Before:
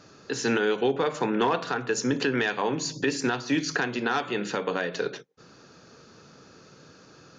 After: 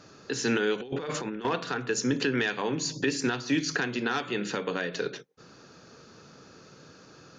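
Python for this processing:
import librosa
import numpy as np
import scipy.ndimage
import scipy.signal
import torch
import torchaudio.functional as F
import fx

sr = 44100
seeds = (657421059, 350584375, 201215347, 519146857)

y = fx.dynamic_eq(x, sr, hz=790.0, q=0.95, threshold_db=-39.0, ratio=4.0, max_db=-6)
y = fx.over_compress(y, sr, threshold_db=-32.0, ratio=-0.5, at=(0.8, 1.45))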